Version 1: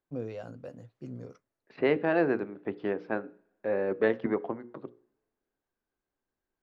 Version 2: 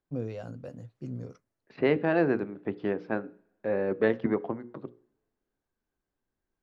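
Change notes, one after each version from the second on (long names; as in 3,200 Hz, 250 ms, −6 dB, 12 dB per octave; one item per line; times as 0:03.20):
master: add bass and treble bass +6 dB, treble +3 dB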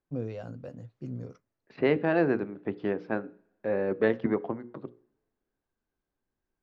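first voice: add high-frequency loss of the air 52 metres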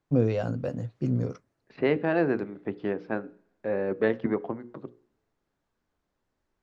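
first voice +11.0 dB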